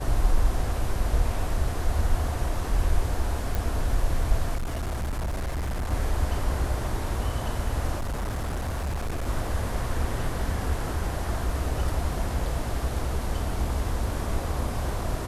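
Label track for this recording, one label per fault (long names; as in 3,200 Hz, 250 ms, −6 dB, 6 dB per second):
3.550000	3.550000	click
4.550000	5.920000	clipping −25.5 dBFS
7.970000	9.280000	clipping −25.5 dBFS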